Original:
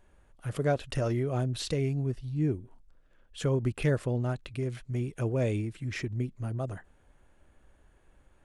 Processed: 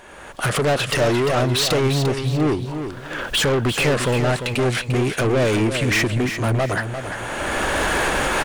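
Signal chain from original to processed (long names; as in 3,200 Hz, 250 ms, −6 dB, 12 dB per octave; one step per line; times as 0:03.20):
camcorder AGC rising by 27 dB per second
mid-hump overdrive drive 29 dB, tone 6,500 Hz, clips at −16 dBFS
repeating echo 347 ms, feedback 29%, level −8.5 dB
level +4 dB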